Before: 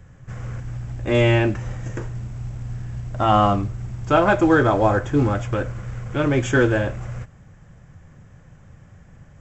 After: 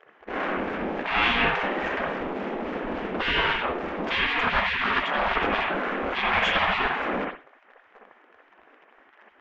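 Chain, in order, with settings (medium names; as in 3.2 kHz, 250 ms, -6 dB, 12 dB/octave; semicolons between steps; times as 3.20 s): harmonic tremolo 3.5 Hz, depth 50%, crossover 570 Hz; in parallel at -7 dB: fuzz box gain 34 dB, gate -41 dBFS; on the sum: low-pass 3.3 kHz 24 dB/octave; reverberation, pre-delay 58 ms, DRR -1 dB; spectral gate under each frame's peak -20 dB weak; trim +2 dB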